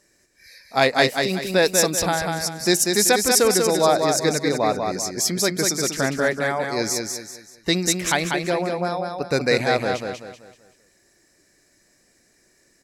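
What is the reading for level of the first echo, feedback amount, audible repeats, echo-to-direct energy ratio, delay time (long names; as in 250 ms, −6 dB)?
−4.5 dB, 36%, 4, −4.0 dB, 192 ms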